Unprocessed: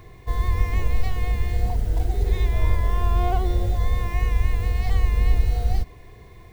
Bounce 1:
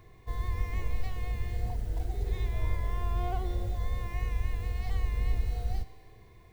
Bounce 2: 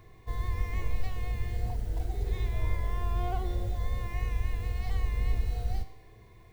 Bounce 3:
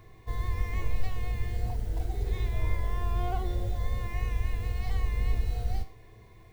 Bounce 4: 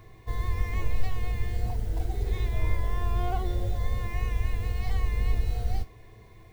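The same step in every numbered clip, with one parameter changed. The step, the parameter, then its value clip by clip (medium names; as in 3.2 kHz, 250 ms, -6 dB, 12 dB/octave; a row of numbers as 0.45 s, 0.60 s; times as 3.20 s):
feedback comb, decay: 2 s, 0.89 s, 0.43 s, 0.18 s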